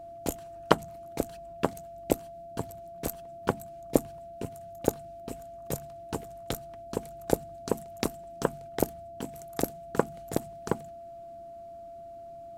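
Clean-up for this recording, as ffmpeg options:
-af "bandreject=f=680:w=30"

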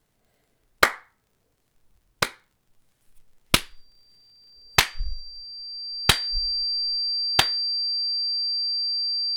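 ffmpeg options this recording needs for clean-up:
-af "adeclick=t=4,bandreject=f=4.7k:w=30"

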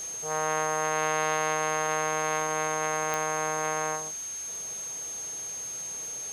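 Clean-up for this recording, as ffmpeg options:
-af "adeclick=t=4,bandreject=f=6.4k:w=30,afwtdn=0.0056"

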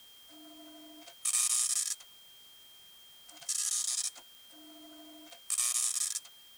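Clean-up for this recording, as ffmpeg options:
-af "adeclick=t=4,bandreject=f=3.2k:w=30,afftdn=nr=24:nf=-56"

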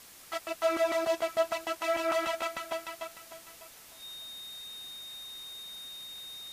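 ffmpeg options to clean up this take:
-af "bandreject=f=3.7k:w=30,afwtdn=0.0028"

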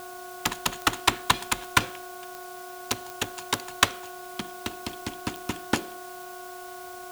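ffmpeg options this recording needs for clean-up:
-af "adeclick=t=4,bandreject=f=365.7:t=h:w=4,bandreject=f=731.4:t=h:w=4,bandreject=f=1.0971k:t=h:w=4,bandreject=f=1.4628k:t=h:w=4,bandreject=f=700:w=30,afftdn=nr=30:nf=-41"

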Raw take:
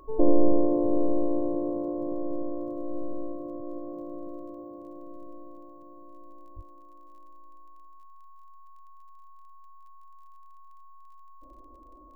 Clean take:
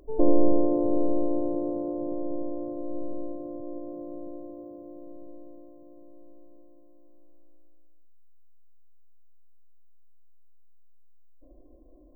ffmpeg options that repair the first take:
-filter_complex "[0:a]adeclick=t=4,bandreject=f=1.1k:w=30,asplit=3[a][b][c];[a]afade=t=out:st=6.55:d=0.02[d];[b]highpass=f=140:w=0.5412,highpass=f=140:w=1.3066,afade=t=in:st=6.55:d=0.02,afade=t=out:st=6.67:d=0.02[e];[c]afade=t=in:st=6.67:d=0.02[f];[d][e][f]amix=inputs=3:normalize=0"

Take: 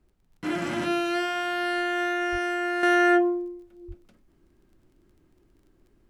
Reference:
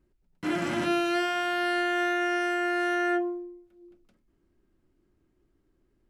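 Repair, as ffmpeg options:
-filter_complex "[0:a]adeclick=t=4,asplit=3[a][b][c];[a]afade=t=out:st=2.31:d=0.02[d];[b]highpass=f=140:w=0.5412,highpass=f=140:w=1.3066,afade=t=in:st=2.31:d=0.02,afade=t=out:st=2.43:d=0.02[e];[c]afade=t=in:st=2.43:d=0.02[f];[d][e][f]amix=inputs=3:normalize=0,asplit=3[g][h][i];[g]afade=t=out:st=3.87:d=0.02[j];[h]highpass=f=140:w=0.5412,highpass=f=140:w=1.3066,afade=t=in:st=3.87:d=0.02,afade=t=out:st=3.99:d=0.02[k];[i]afade=t=in:st=3.99:d=0.02[l];[j][k][l]amix=inputs=3:normalize=0,agate=range=-21dB:threshold=-55dB,asetnsamples=n=441:p=0,asendcmd='2.83 volume volume -7dB',volume=0dB"

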